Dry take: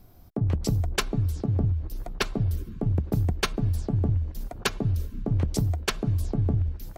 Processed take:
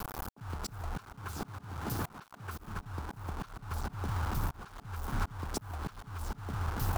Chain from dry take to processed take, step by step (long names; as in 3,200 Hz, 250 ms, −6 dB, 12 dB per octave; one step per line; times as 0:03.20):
0:00.96–0:02.58: high-pass filter 140 Hz 12 dB per octave
bucket-brigade delay 277 ms, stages 4,096, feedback 43%, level −13 dB
downward compressor 16 to 1, threshold −35 dBFS, peak gain reduction 16.5 dB
bit reduction 8 bits
flat-topped bell 1,100 Hz +10.5 dB 1.2 octaves
volume swells 449 ms
0:03.71–0:04.43: multiband upward and downward compressor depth 70%
level +8.5 dB